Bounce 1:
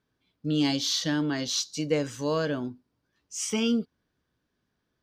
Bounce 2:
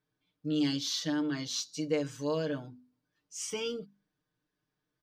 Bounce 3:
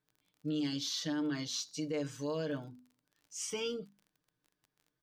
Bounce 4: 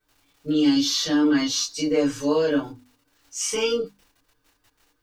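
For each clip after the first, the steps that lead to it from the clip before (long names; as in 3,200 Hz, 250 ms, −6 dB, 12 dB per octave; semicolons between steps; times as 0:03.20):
mains-hum notches 50/100/150/200/250 Hz; comb filter 6.6 ms, depth 83%; level −8.5 dB
brickwall limiter −26 dBFS, peak gain reduction 8 dB; surface crackle 30 per second −50 dBFS; level −1.5 dB
convolution reverb, pre-delay 3 ms, DRR −14.5 dB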